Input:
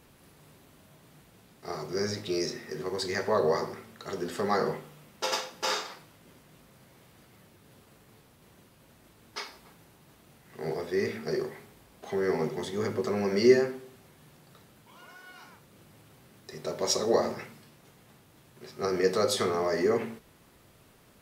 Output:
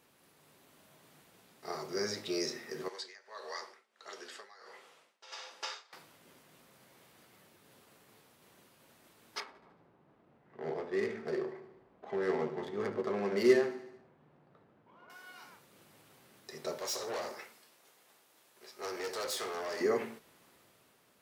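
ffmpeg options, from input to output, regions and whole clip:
-filter_complex "[0:a]asettb=1/sr,asplit=3[s0][s1][s2];[s0]atrim=end=2.884[s3];[s1]atrim=start=2.88:end=5.93,asetpts=PTS-STARTPTS,afade=t=in:d=0.004:c=qsin,afade=t=out:st=3.046:d=0.004:c=qsin,acrossover=split=1400|5300[s4][s5][s6];[s4]acompressor=threshold=0.01:ratio=4[s7];[s5]acompressor=threshold=0.0178:ratio=4[s8];[s6]acompressor=threshold=0.00562:ratio=4[s9];[s7][s8][s9]amix=inputs=3:normalize=0,tremolo=f=1.5:d=0.9,highpass=460,lowpass=7600[s10];[s2]atrim=start=5.926[s11];[s3][s10]acrossfade=d=0.004:c1=hsin:c2=qsin[s12];[s12][s11]acrossfade=d=0.004:c1=qsin:c2=hsin,asettb=1/sr,asplit=3[s13][s14][s15];[s13]atrim=end=9.404[s16];[s14]atrim=start=9.4:end=15.1,asetpts=PTS-STARTPTS,afade=t=in:d=0.004:c=qsin,afade=t=out:st=5.696:d=0.004:c=qsin,acrusher=bits=7:mode=log:mix=0:aa=0.000001,adynamicsmooth=sensitivity=4.5:basefreq=1200,aecho=1:1:74|148|222|296|370|444:0.188|0.109|0.0634|0.0368|0.0213|0.0124,atrim=end_sample=251370[s17];[s15]atrim=start=15.096[s18];[s16][s17]acrossfade=d=0.004:c1=hsin:c2=qsin[s19];[s19][s18]acrossfade=d=0.004:c1=qsin:c2=hsin,asettb=1/sr,asplit=3[s20][s21][s22];[s20]atrim=end=16.784[s23];[s21]atrim=start=16.78:end=19.81,asetpts=PTS-STARTPTS,afade=t=in:d=0.004:c=qsin,afade=t=out:st=3.026:d=0.004:c=qsin,bass=f=250:g=-15,treble=f=4000:g=3,aeval=exprs='(tanh(35.5*val(0)+0.6)-tanh(0.6))/35.5':c=same[s24];[s22]atrim=start=19.806[s25];[s23][s24]acrossfade=d=0.004:c1=hsin:c2=qsin[s26];[s26][s25]acrossfade=d=0.004:c1=qsin:c2=hsin,highpass=f=360:p=1,dynaudnorm=f=110:g=11:m=1.58,volume=0.501"

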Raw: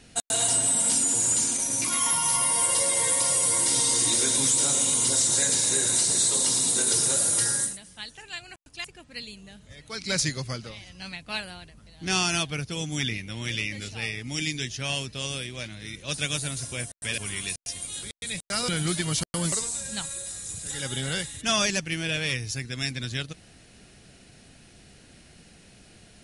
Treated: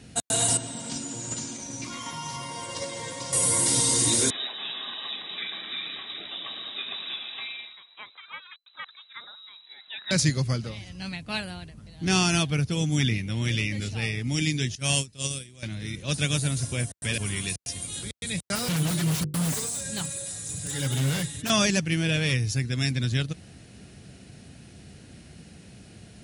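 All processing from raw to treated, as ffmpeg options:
-filter_complex "[0:a]asettb=1/sr,asplit=3[s0][s1][s2];[s0]atrim=end=0.574[s3];[s1]atrim=start=0.57:end=3.33,asetpts=PTS-STARTPTS,afade=t=in:d=0.004:c=qsin,afade=t=out:st=2.756:d=0.004:c=qsin,lowpass=f=6500:w=0.5412,lowpass=f=6500:w=1.3066,agate=range=0.447:threshold=0.0355:ratio=16:release=100:detection=peak,asplit=2[s4][s5];[s5]adelay=14,volume=0.2[s6];[s4][s6]amix=inputs=2:normalize=0,atrim=end_sample=121716[s7];[s2]atrim=start=3.326[s8];[s3][s7]acrossfade=d=0.004:c1=hsin:c2=qsin[s9];[s9][s8]acrossfade=d=0.004:c1=qsin:c2=hsin,asettb=1/sr,asplit=3[s10][s11][s12];[s10]atrim=end=4.304[s13];[s11]atrim=start=4.3:end=10.11,asetpts=PTS-STARTPTS,afade=t=in:d=0.004:c=qsin,afade=t=out:st=5.806:d=0.004:c=qsin,lowpass=f=3400:t=q:w=0.5098,lowpass=f=3400:t=q:w=0.6013,lowpass=f=3400:t=q:w=0.9,lowpass=f=3400:t=q:w=2.563,afreqshift=-4000,highpass=f=1300:p=1[s14];[s12]atrim=start=10.106[s15];[s13][s14]acrossfade=d=0.004:c1=hsin:c2=qsin[s16];[s16][s15]acrossfade=d=0.004:c1=qsin:c2=hsin,asettb=1/sr,asplit=3[s17][s18][s19];[s17]atrim=end=14.754[s20];[s18]atrim=start=14.75:end=15.63,asetpts=PTS-STARTPTS,afade=t=in:d=0.004:c=qsin,afade=t=out:st=0.876:d=0.004:c=qsin,agate=range=0.126:threshold=0.0251:ratio=16:release=100:detection=peak,equalizer=f=8400:t=o:w=1.1:g=13.5[s21];[s19]atrim=start=15.626[s22];[s20][s21]acrossfade=d=0.004:c1=hsin:c2=qsin[s23];[s23][s22]acrossfade=d=0.004:c1=qsin:c2=hsin,asettb=1/sr,asplit=3[s24][s25][s26];[s24]atrim=end=18.554[s27];[s25]atrim=start=18.55:end=21.5,asetpts=PTS-STARTPTS,afade=t=in:d=0.004:c=qsin,afade=t=out:st=2.946:d=0.004:c=qsin,bandreject=f=50:t=h:w=6,bandreject=f=100:t=h:w=6,bandreject=f=150:t=h:w=6,bandreject=f=200:t=h:w=6,bandreject=f=250:t=h:w=6,bandreject=f=300:t=h:w=6,bandreject=f=350:t=h:w=6,bandreject=f=400:t=h:w=6,bandreject=f=450:t=h:w=6,bandreject=f=500:t=h:w=6,aecho=1:1:6.9:0.42,atrim=end_sample=130095,aeval=exprs='0.0531*(abs(mod(val(0)/0.0531+3,4)-2)-1)':c=same[s28];[s26]atrim=start=21.496[s29];[s27][s28]acrossfade=d=0.004:c1=hsin:c2=qsin[s30];[s30][s29]acrossfade=d=0.004:c1=qsin:c2=hsin,highpass=61,equalizer=f=100:w=0.32:g=9"

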